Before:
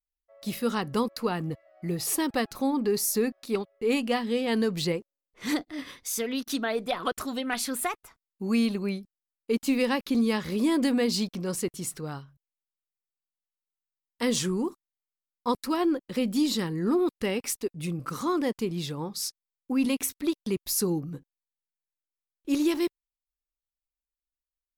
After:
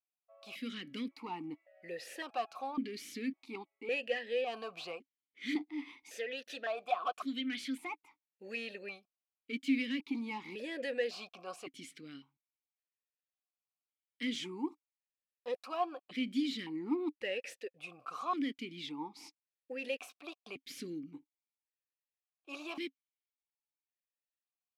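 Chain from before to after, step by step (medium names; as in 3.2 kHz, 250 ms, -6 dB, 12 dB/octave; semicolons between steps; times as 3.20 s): tilt shelf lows -7.5 dB, about 680 Hz; saturation -23 dBFS, distortion -11 dB; stepped vowel filter 1.8 Hz; trim +3.5 dB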